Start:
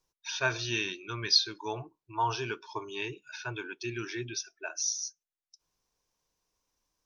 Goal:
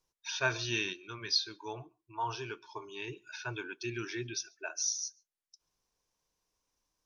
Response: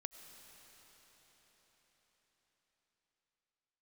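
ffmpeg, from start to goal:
-filter_complex "[0:a]asettb=1/sr,asplit=3[link_01][link_02][link_03];[link_01]atrim=end=0.934[link_04];[link_02]atrim=start=0.93:end=3.08,asetpts=PTS-STARTPTS,afade=type=in:duration=0.004:curve=qsin,afade=type=out:start_time=2.146:duration=0.004:curve=qsin,flanger=delay=2:depth=3.4:regen=-80:speed=1.3:shape=triangular[link_05];[link_03]atrim=start=3.076[link_06];[link_04][link_05]acrossfade=duration=0.004:curve1=hsin:curve2=qsin[link_07];[link_07][link_06]acrossfade=duration=0.004:curve1=qsin:curve2=hsin[link_08];[1:a]atrim=start_sample=2205,atrim=end_sample=3528,asetrate=24696,aresample=44100[link_09];[link_08][link_09]afir=irnorm=-1:irlink=0"

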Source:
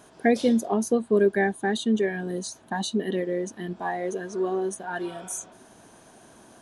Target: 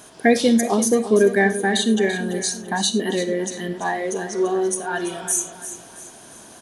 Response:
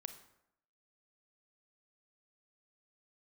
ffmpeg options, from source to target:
-filter_complex "[0:a]aecho=1:1:338|676|1014|1352:0.251|0.103|0.0422|0.0173,asplit=2[link_01][link_02];[1:a]atrim=start_sample=2205,afade=type=out:start_time=0.16:duration=0.01,atrim=end_sample=7497,highshelf=frequency=2100:gain=11.5[link_03];[link_02][link_03]afir=irnorm=-1:irlink=0,volume=9dB[link_04];[link_01][link_04]amix=inputs=2:normalize=0,volume=-4.5dB"

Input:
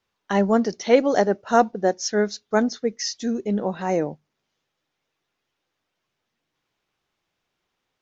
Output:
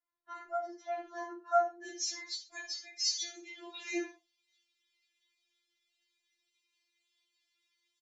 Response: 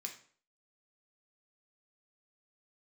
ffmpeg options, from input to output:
-filter_complex "[0:a]asetnsamples=nb_out_samples=441:pad=0,asendcmd='1.83 highshelf g 8;3.12 highshelf g 14',highshelf=frequency=1800:width_type=q:width=1.5:gain=-8.5,aresample=22050,aresample=44100[link_01];[1:a]atrim=start_sample=2205,atrim=end_sample=6174[link_02];[link_01][link_02]afir=irnorm=-1:irlink=0,afftfilt=real='re*4*eq(mod(b,16),0)':imag='im*4*eq(mod(b,16),0)':win_size=2048:overlap=0.75,volume=-8.5dB"

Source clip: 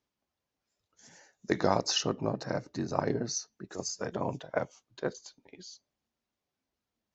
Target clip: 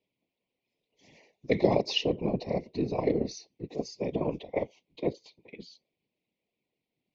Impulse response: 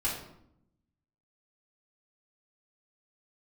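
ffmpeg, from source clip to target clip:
-af "asuperstop=centerf=1400:order=12:qfactor=1.6,highpass=180,equalizer=frequency=200:width_type=q:width=4:gain=8,equalizer=frequency=420:width_type=q:width=4:gain=6,equalizer=frequency=870:width_type=q:width=4:gain=-8,equalizer=frequency=1600:width_type=q:width=4:gain=-6,equalizer=frequency=2400:width_type=q:width=4:gain=7,lowpass=frequency=4100:width=0.5412,lowpass=frequency=4100:width=1.3066,afftfilt=real='hypot(re,im)*cos(2*PI*random(0))':imag='hypot(re,im)*sin(2*PI*random(1))':win_size=512:overlap=0.75,volume=8dB"

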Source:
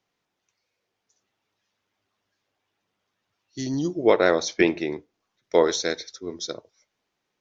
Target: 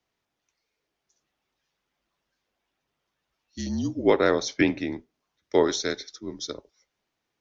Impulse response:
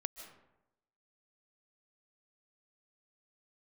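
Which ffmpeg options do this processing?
-af "afreqshift=-52,volume=-2dB"

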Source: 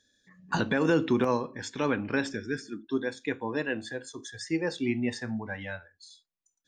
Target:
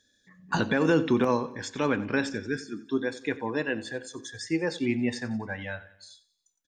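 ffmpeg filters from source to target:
ffmpeg -i in.wav -af "aecho=1:1:91|182|273|364:0.126|0.0617|0.0302|0.0148,volume=1.5dB" out.wav

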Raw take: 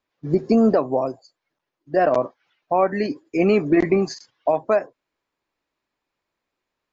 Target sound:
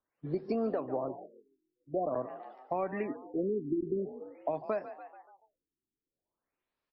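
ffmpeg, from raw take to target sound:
ffmpeg -i in.wav -filter_complex "[0:a]asplit=6[link_01][link_02][link_03][link_04][link_05][link_06];[link_02]adelay=144,afreqshift=46,volume=-17dB[link_07];[link_03]adelay=288,afreqshift=92,volume=-22.7dB[link_08];[link_04]adelay=432,afreqshift=138,volume=-28.4dB[link_09];[link_05]adelay=576,afreqshift=184,volume=-34dB[link_10];[link_06]adelay=720,afreqshift=230,volume=-39.7dB[link_11];[link_01][link_07][link_08][link_09][link_10][link_11]amix=inputs=6:normalize=0,acrossover=split=340|4000[link_12][link_13][link_14];[link_12]acompressor=threshold=-31dB:ratio=4[link_15];[link_13]acompressor=threshold=-24dB:ratio=4[link_16];[link_14]acompressor=threshold=-60dB:ratio=4[link_17];[link_15][link_16][link_17]amix=inputs=3:normalize=0,afftfilt=real='re*lt(b*sr/1024,400*pow(5800/400,0.5+0.5*sin(2*PI*0.47*pts/sr)))':imag='im*lt(b*sr/1024,400*pow(5800/400,0.5+0.5*sin(2*PI*0.47*pts/sr)))':win_size=1024:overlap=0.75,volume=-8dB" out.wav

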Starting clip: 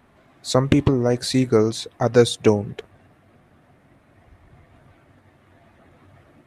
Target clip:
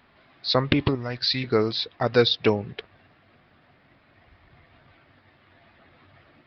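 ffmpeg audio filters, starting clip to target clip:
ffmpeg -i in.wav -filter_complex "[0:a]tiltshelf=frequency=1300:gain=-6,aresample=11025,aresample=44100,asettb=1/sr,asplit=3[link_01][link_02][link_03];[link_01]atrim=end=0.954[link_04];[link_02]atrim=start=0.95:end=1.44,asetpts=PTS-STARTPTS,afade=type=in:duration=0.004:curve=qsin,afade=type=out:start_time=0.486:duration=0.004:curve=qsin,equalizer=frequency=410:width_type=o:width=1.9:gain=-12[link_05];[link_03]atrim=start=1.436[link_06];[link_04][link_05]acrossfade=duration=0.004:curve1=hsin:curve2=qsin[link_07];[link_07][link_06]acrossfade=duration=0.004:curve1=qsin:curve2=hsin" out.wav

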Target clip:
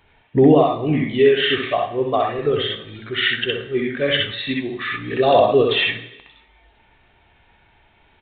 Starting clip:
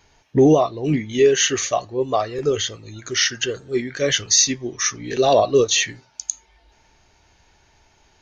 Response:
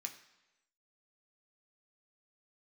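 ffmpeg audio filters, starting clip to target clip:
-filter_complex "[0:a]asettb=1/sr,asplit=3[link_01][link_02][link_03];[link_01]atrim=end=5.684[link_04];[link_02]atrim=start=5.68:end=6.29,asetpts=PTS-STARTPTS,afade=type=in:duration=0.004:curve=qsin,afade=type=out:start_time=0.606:duration=0.004:curve=qsin,adynamicsmooth=sensitivity=5:basefreq=540[link_05];[link_03]atrim=start=6.286[link_06];[link_04][link_05]acrossfade=duration=0.004:curve1=hsin:curve2=qsin[link_07];[link_07][link_06]acrossfade=duration=0.004:curve1=qsin:curve2=hsin,asplit=2[link_08][link_09];[1:a]atrim=start_sample=2205,adelay=63[link_10];[link_09][link_10]afir=irnorm=-1:irlink=0,volume=3.5dB[link_11];[link_08][link_11]amix=inputs=2:normalize=0,aresample=8000,aresample=44100"

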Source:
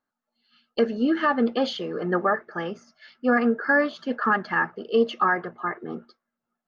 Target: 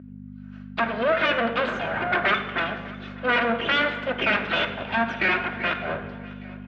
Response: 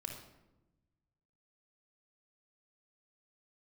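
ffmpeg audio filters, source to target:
-filter_complex "[0:a]equalizer=frequency=390:width_type=o:width=0.39:gain=-8.5,bandreject=frequency=1500:width=12,aecho=1:1:2.8:0.86,asplit=2[link_01][link_02];[link_02]acompressor=threshold=-29dB:ratio=6,volume=-1dB[link_03];[link_01][link_03]amix=inputs=2:normalize=0,aeval=exprs='abs(val(0))':channel_layout=same,aeval=exprs='val(0)+0.0178*(sin(2*PI*50*n/s)+sin(2*PI*2*50*n/s)/2+sin(2*PI*3*50*n/s)/3+sin(2*PI*4*50*n/s)/4+sin(2*PI*5*50*n/s)/5)':channel_layout=same,asoftclip=type=tanh:threshold=-14.5dB,highpass=210,equalizer=frequency=320:width_type=q:width=4:gain=-4,equalizer=frequency=900:width_type=q:width=4:gain=-6,equalizer=frequency=1500:width_type=q:width=4:gain=7,lowpass=frequency=3000:width=0.5412,lowpass=frequency=3000:width=1.3066,aecho=1:1:600|1200|1800|2400:0.0891|0.0463|0.0241|0.0125,asplit=2[link_04][link_05];[1:a]atrim=start_sample=2205,asetrate=30870,aresample=44100[link_06];[link_05][link_06]afir=irnorm=-1:irlink=0,volume=-0.5dB[link_07];[link_04][link_07]amix=inputs=2:normalize=0,volume=1.5dB"

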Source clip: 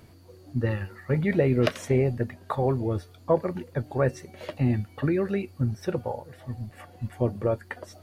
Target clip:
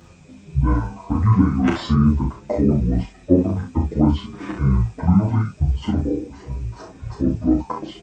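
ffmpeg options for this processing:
ffmpeg -i in.wav -filter_complex "[0:a]highpass=frequency=120:width=0.5412,highpass=frequency=120:width=1.3066,asplit=2[link_01][link_02];[link_02]alimiter=limit=-18.5dB:level=0:latency=1:release=17,volume=-0.5dB[link_03];[link_01][link_03]amix=inputs=2:normalize=0,asetrate=24046,aresample=44100,atempo=1.83401,aecho=1:1:35|62:0.596|0.422,asplit=2[link_04][link_05];[link_05]adelay=9.1,afreqshift=-0.55[link_06];[link_04][link_06]amix=inputs=2:normalize=1,volume=5.5dB" out.wav

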